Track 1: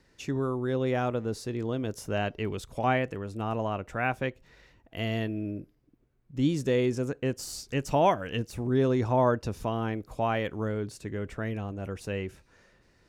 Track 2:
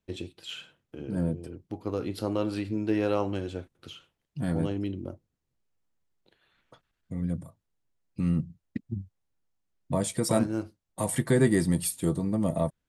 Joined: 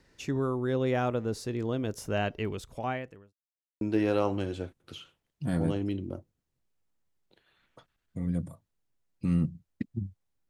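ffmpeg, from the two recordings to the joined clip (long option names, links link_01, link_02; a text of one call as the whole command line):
ffmpeg -i cue0.wav -i cue1.wav -filter_complex "[0:a]apad=whole_dur=10.49,atrim=end=10.49,asplit=2[link_01][link_02];[link_01]atrim=end=3.33,asetpts=PTS-STARTPTS,afade=type=out:start_time=2.36:duration=0.97[link_03];[link_02]atrim=start=3.33:end=3.81,asetpts=PTS-STARTPTS,volume=0[link_04];[1:a]atrim=start=2.76:end=9.44,asetpts=PTS-STARTPTS,afade=type=in:duration=0.004:curve=hsin[link_05];[link_03][link_04][link_05]concat=n=3:v=0:a=1" out.wav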